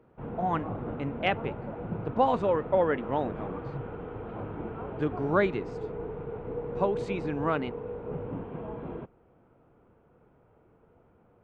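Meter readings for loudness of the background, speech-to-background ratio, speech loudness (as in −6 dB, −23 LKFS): −37.5 LKFS, 7.5 dB, −30.0 LKFS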